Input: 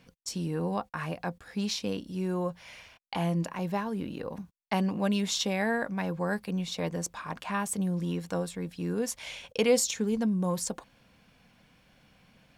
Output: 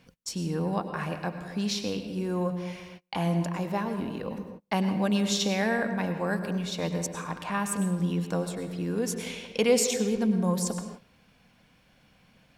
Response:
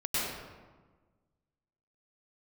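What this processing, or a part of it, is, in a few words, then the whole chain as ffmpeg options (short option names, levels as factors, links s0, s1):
keyed gated reverb: -filter_complex "[0:a]asplit=3[s0][s1][s2];[1:a]atrim=start_sample=2205[s3];[s1][s3]afir=irnorm=-1:irlink=0[s4];[s2]apad=whole_len=554745[s5];[s4][s5]sidechaingate=range=0.0224:threshold=0.00141:ratio=16:detection=peak,volume=0.188[s6];[s0][s6]amix=inputs=2:normalize=0"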